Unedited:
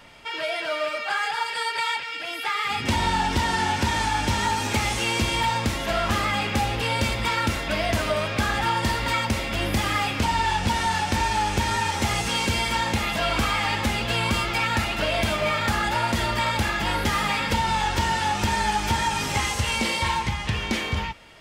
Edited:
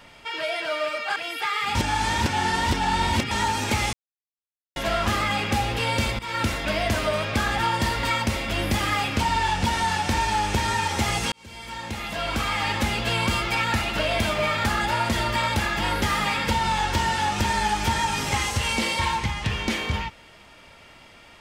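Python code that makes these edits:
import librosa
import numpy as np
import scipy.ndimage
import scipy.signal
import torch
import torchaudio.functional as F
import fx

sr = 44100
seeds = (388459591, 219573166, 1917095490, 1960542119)

y = fx.edit(x, sr, fx.cut(start_s=1.16, length_s=1.03),
    fx.reverse_span(start_s=2.78, length_s=1.56),
    fx.silence(start_s=4.96, length_s=0.83),
    fx.fade_in_from(start_s=7.22, length_s=0.25, floor_db=-18.0),
    fx.fade_in_span(start_s=12.35, length_s=1.46), tone=tone)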